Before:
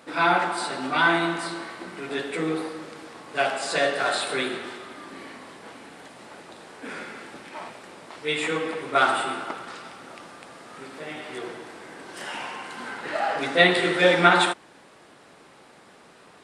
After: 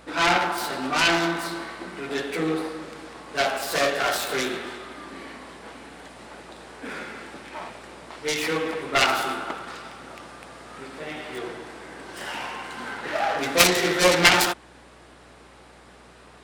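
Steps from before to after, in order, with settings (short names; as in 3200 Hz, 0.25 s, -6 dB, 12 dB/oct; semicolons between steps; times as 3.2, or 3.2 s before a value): self-modulated delay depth 0.5 ms; hum 60 Hz, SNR 30 dB; gain +1.5 dB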